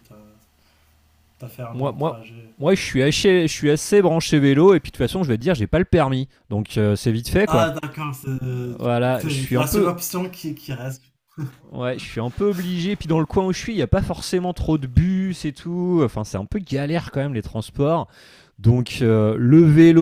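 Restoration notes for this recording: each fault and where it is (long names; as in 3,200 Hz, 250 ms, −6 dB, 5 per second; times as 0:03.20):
0:05.41: drop-out 3.2 ms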